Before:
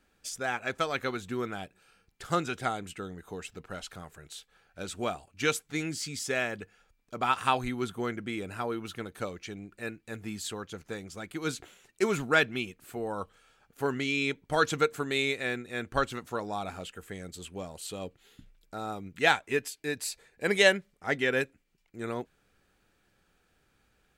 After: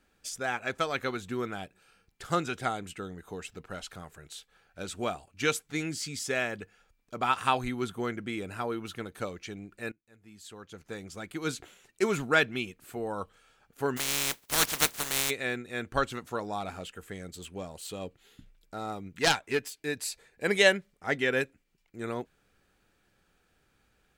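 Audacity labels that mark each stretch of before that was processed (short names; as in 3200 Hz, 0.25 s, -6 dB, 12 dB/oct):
9.920000	11.060000	fade in quadratic, from -23.5 dB
13.960000	15.290000	spectral contrast lowered exponent 0.18
16.600000	19.860000	self-modulated delay depth 0.22 ms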